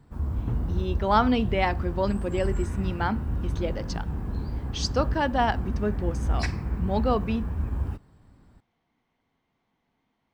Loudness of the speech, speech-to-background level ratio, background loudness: −28.0 LKFS, 3.0 dB, −31.0 LKFS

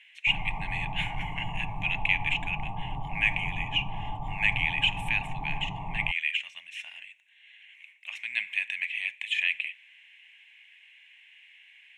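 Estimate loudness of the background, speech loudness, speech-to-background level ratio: −37.5 LKFS, −29.5 LKFS, 8.0 dB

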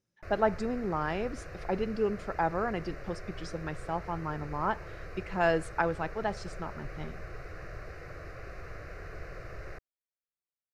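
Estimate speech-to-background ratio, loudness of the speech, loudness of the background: 11.5 dB, −33.5 LKFS, −45.0 LKFS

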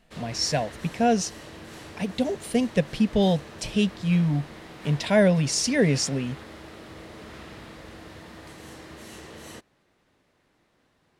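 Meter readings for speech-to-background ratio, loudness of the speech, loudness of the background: 18.0 dB, −24.5 LKFS, −42.5 LKFS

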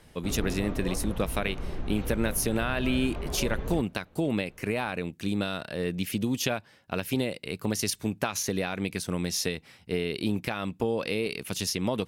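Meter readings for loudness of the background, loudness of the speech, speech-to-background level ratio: −37.0 LKFS, −30.5 LKFS, 6.5 dB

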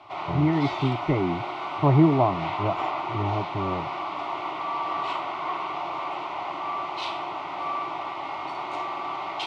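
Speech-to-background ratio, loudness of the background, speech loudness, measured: 6.0 dB, −31.0 LKFS, −25.0 LKFS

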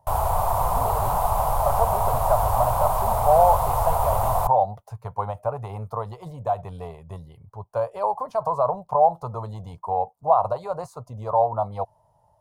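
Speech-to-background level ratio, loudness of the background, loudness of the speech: −2.0 dB, −23.5 LKFS, −25.5 LKFS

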